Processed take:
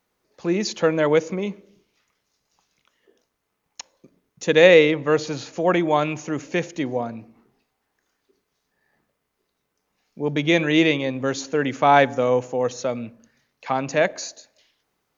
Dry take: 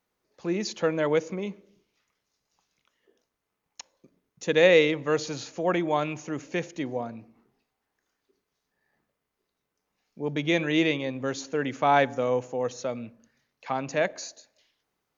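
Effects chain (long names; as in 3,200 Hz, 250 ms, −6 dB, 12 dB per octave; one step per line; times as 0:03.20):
0:04.74–0:05.53: high-shelf EQ 4,800 Hz −8 dB
level +6 dB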